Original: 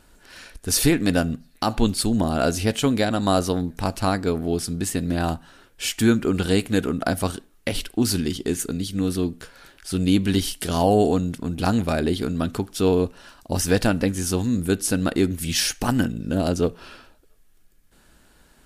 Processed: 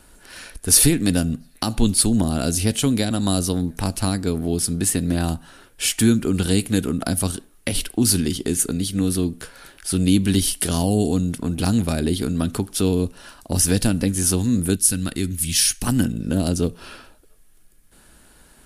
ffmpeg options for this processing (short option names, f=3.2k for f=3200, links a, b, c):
-filter_complex "[0:a]asettb=1/sr,asplit=3[a][b][c];[a]atrim=end=14.764[d];[b]atrim=start=14.76:end=15.87,asetpts=PTS-STARTPTS,afade=t=in:d=0.004:c=qsin,afade=t=out:st=1.106:d=0.004:c=qsin,equalizer=f=640:w=0.49:g=-15[e];[c]atrim=start=15.866[f];[d][e]acrossfade=d=0.004:c1=hsin:c2=qsin[g];[g][f]acrossfade=d=0.004:c1=qsin:c2=hsin,equalizer=f=10k:t=o:w=0.44:g=8.5,acrossover=split=310|3000[h][i][j];[i]acompressor=threshold=-31dB:ratio=6[k];[h][k][j]amix=inputs=3:normalize=0,volume=3.5dB"